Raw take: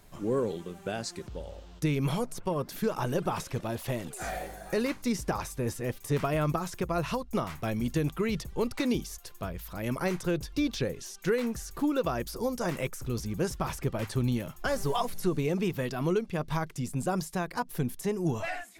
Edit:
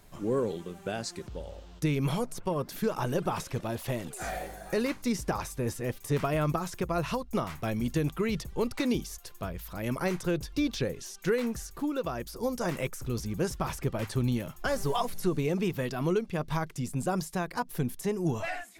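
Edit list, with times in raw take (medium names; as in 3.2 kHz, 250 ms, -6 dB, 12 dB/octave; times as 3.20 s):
11.67–12.43 s: gain -3.5 dB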